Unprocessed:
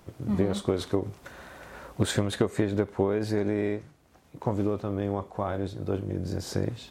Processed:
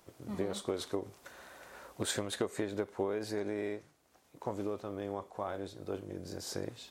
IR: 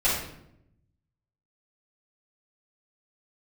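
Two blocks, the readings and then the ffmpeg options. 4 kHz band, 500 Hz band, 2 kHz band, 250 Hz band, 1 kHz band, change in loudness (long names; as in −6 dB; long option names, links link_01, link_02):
−4.0 dB, −7.5 dB, −6.5 dB, −11.0 dB, −6.5 dB, −9.0 dB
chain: -af "bass=frequency=250:gain=-10,treble=frequency=4000:gain=5,volume=-6.5dB"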